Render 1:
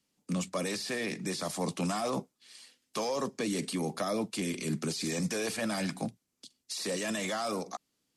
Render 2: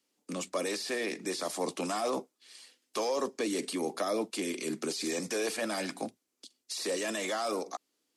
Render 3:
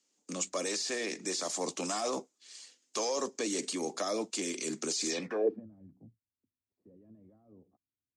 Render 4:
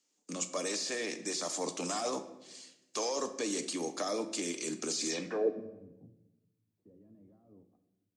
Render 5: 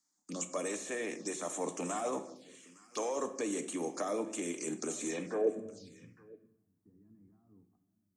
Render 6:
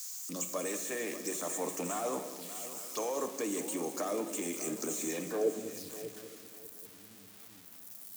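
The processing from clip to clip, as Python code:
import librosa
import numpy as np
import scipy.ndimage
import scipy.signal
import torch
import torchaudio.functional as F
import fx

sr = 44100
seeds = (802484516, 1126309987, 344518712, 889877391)

y1 = fx.low_shelf_res(x, sr, hz=220.0, db=-12.5, q=1.5)
y2 = fx.filter_sweep_lowpass(y1, sr, from_hz=6900.0, to_hz=100.0, start_s=5.09, end_s=5.68, q=3.7)
y2 = y2 * librosa.db_to_amplitude(-2.5)
y3 = fx.room_shoebox(y2, sr, seeds[0], volume_m3=420.0, walls='mixed', distance_m=0.44)
y3 = y3 * librosa.db_to_amplitude(-1.5)
y4 = y3 + 10.0 ** (-20.5 / 20.0) * np.pad(y3, (int(862 * sr / 1000.0), 0))[:len(y3)]
y4 = fx.env_phaser(y4, sr, low_hz=470.0, high_hz=4800.0, full_db=-33.5)
y5 = y4 + 0.5 * 10.0 ** (-36.5 / 20.0) * np.diff(np.sign(y4), prepend=np.sign(y4[:1]))
y5 = fx.echo_heads(y5, sr, ms=197, heads='first and third', feedback_pct=44, wet_db=-14.0)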